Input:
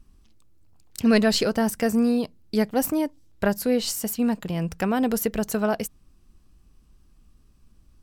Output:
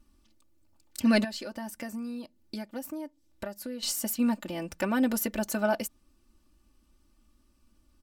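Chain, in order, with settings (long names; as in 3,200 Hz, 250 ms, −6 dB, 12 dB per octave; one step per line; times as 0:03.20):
low-shelf EQ 100 Hz −11 dB
comb filter 3.4 ms, depth 93%
0:01.24–0:03.83: downward compressor 5 to 1, threshold −31 dBFS, peak gain reduction 15 dB
level −5 dB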